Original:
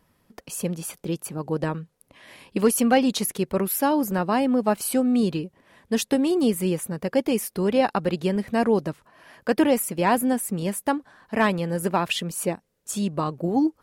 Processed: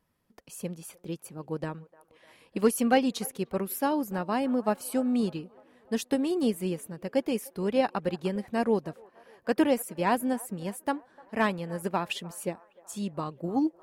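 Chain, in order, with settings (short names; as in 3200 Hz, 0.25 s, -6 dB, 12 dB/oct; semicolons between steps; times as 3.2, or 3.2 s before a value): band-limited delay 0.301 s, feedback 62%, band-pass 870 Hz, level -17.5 dB; upward expander 1.5:1, over -30 dBFS; gain -3 dB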